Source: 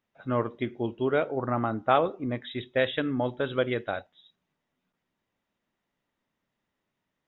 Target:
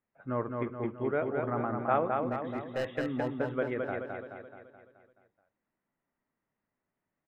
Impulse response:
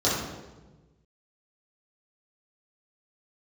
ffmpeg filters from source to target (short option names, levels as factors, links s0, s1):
-filter_complex "[0:a]lowpass=f=2200:w=0.5412,lowpass=f=2200:w=1.3066,asettb=1/sr,asplit=3[s0][s1][s2];[s0]atrim=end=2.144[s3];[s1]atrim=start=2.14:end=2.92,asetpts=PTS-STARTPTS,afade=t=in:d=0.004:c=qsin,afade=t=out:st=0.776:d=0.004:c=qsin,asoftclip=type=hard:threshold=0.0708[s4];[s2]atrim=start=2.916[s5];[s3][s4]acrossfade=d=0.004:c1=hsin:c2=qsin[s6];[s6][s5]acrossfade=d=0.004:c1=qsin:c2=hsin,aecho=1:1:214|428|642|856|1070|1284|1498:0.631|0.334|0.177|0.0939|0.0498|0.0264|0.014,volume=0.531"